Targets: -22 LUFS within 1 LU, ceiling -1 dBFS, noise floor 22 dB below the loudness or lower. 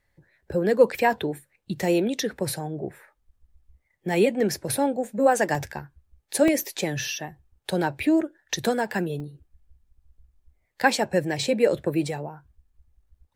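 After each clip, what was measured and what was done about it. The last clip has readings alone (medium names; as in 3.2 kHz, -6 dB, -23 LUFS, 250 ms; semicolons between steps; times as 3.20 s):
dropouts 4; longest dropout 1.8 ms; loudness -25.0 LUFS; peak level -6.0 dBFS; loudness target -22.0 LUFS
-> interpolate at 0.52/5.55/6.48/9.20 s, 1.8 ms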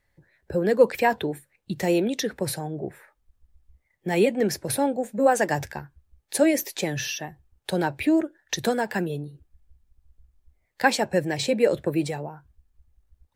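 dropouts 0; loudness -25.0 LUFS; peak level -6.0 dBFS; loudness target -22.0 LUFS
-> trim +3 dB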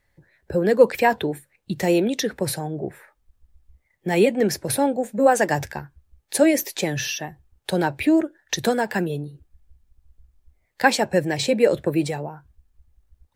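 loudness -22.0 LUFS; peak level -3.0 dBFS; noise floor -70 dBFS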